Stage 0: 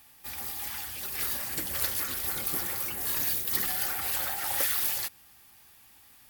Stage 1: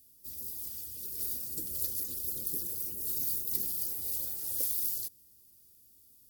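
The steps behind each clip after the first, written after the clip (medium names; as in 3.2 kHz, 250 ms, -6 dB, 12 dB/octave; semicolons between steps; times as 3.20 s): FFT filter 480 Hz 0 dB, 710 Hz -20 dB, 2.1 kHz -24 dB, 4.9 kHz -2 dB, 13 kHz +3 dB; trim -6 dB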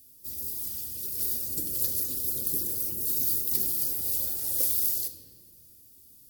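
in parallel at -7.5 dB: wavefolder -20.5 dBFS; on the sum: reverberation RT60 1.7 s, pre-delay 8 ms, DRR 6.5 dB; trim +2.5 dB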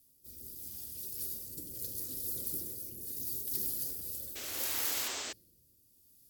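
painted sound noise, 4.35–5.33 s, 230–8300 Hz -32 dBFS; rotary cabinet horn 0.75 Hz; trim -6 dB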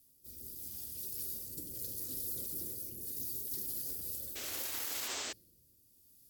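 peak limiter -28 dBFS, peak gain reduction 8.5 dB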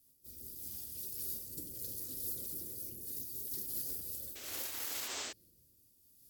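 random flutter of the level, depth 60%; trim +1.5 dB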